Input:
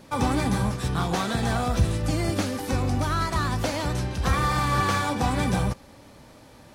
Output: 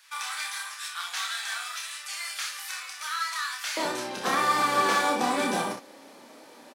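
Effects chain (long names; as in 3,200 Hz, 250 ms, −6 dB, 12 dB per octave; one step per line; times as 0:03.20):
high-pass filter 1,400 Hz 24 dB per octave, from 0:03.77 260 Hz
ambience of single reflections 29 ms −4 dB, 62 ms −7 dB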